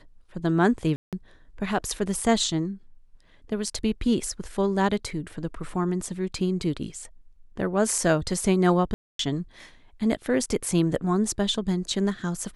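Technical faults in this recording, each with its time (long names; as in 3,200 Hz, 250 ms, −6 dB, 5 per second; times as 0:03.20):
0:00.96–0:01.13: drop-out 167 ms
0:08.94–0:09.19: drop-out 253 ms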